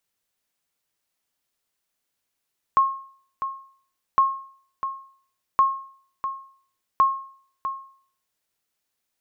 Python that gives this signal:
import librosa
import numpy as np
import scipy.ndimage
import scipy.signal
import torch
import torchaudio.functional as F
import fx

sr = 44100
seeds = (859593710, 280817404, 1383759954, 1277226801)

y = fx.sonar_ping(sr, hz=1080.0, decay_s=0.52, every_s=1.41, pings=4, echo_s=0.65, echo_db=-10.5, level_db=-10.5)